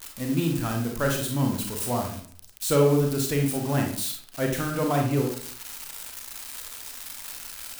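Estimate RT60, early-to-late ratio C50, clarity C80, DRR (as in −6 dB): 0.55 s, 4.5 dB, 9.0 dB, 1.0 dB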